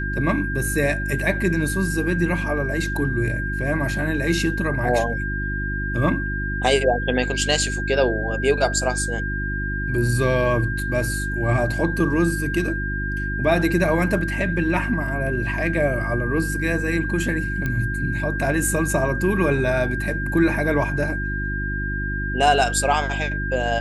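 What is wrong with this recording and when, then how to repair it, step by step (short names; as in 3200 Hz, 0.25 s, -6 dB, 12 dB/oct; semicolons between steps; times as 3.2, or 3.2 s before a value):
hum 50 Hz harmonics 7 -27 dBFS
tone 1600 Hz -27 dBFS
17.66 pop -13 dBFS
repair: de-click; notch 1600 Hz, Q 30; de-hum 50 Hz, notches 7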